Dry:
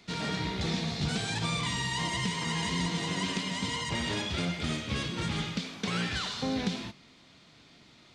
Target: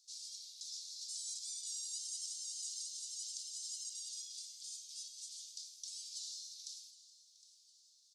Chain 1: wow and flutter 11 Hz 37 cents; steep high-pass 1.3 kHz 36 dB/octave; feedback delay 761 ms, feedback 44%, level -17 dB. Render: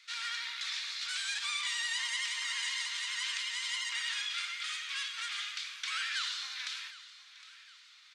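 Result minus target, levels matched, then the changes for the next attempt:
4 kHz band +3.0 dB
change: steep high-pass 5.1 kHz 36 dB/octave

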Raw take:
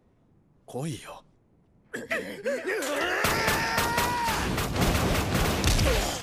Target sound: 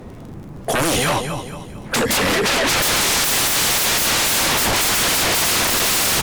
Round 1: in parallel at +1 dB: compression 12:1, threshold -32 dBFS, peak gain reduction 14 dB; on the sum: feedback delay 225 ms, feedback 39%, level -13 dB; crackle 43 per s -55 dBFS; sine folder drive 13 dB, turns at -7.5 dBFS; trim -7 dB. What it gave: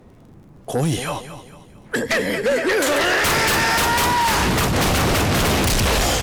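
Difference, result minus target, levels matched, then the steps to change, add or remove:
sine folder: distortion -29 dB
change: sine folder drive 24 dB, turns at -7.5 dBFS

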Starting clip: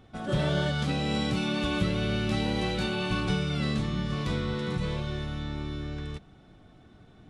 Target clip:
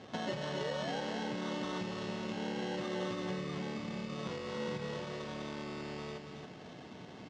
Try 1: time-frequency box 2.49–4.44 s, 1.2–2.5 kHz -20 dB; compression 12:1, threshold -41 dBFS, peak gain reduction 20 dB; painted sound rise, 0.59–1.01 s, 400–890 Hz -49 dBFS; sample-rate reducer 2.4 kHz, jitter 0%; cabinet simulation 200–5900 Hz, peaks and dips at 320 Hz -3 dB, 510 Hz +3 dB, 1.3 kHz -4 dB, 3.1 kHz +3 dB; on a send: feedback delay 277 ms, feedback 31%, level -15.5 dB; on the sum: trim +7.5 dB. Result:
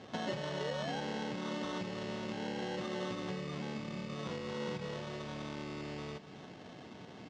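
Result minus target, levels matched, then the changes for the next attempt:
echo-to-direct -9 dB
change: feedback delay 277 ms, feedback 31%, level -6.5 dB

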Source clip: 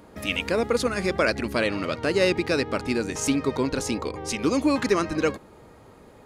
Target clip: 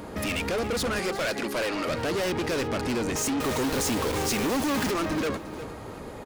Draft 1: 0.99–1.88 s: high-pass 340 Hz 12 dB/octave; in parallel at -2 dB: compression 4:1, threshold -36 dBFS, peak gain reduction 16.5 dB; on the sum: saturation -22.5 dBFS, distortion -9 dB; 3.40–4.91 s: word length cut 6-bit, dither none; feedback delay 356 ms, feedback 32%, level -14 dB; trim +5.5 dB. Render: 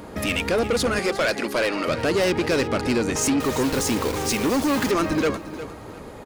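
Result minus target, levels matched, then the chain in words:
saturation: distortion -5 dB
0.99–1.88 s: high-pass 340 Hz 12 dB/octave; in parallel at -2 dB: compression 4:1, threshold -36 dBFS, peak gain reduction 16.5 dB; on the sum: saturation -31 dBFS, distortion -4 dB; 3.40–4.91 s: word length cut 6-bit, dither none; feedback delay 356 ms, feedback 32%, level -14 dB; trim +5.5 dB

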